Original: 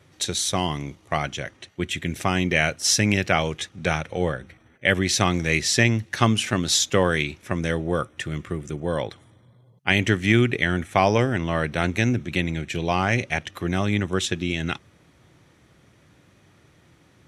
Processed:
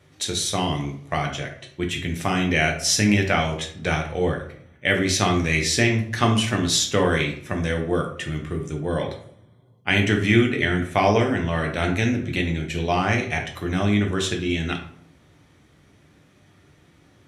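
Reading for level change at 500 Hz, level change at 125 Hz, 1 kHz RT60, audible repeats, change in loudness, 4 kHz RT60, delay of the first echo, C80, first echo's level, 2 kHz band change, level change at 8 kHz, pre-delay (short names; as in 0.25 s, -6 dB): +1.0 dB, +1.0 dB, 0.55 s, none, +0.5 dB, 0.40 s, none, 12.0 dB, none, 0.0 dB, -0.5 dB, 6 ms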